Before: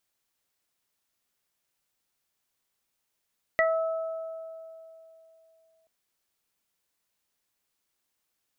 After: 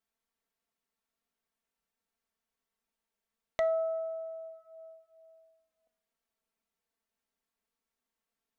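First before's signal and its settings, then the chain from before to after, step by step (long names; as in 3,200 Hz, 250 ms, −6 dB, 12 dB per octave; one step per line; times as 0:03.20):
harmonic partials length 2.28 s, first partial 650 Hz, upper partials −7.5/3 dB, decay 3.05 s, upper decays 1.84/0.21 s, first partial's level −21 dB
high-shelf EQ 2,400 Hz −10 dB
flanger swept by the level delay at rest 4.5 ms, full sweep at −39 dBFS
coupled-rooms reverb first 0.43 s, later 2.4 s, from −18 dB, DRR 16 dB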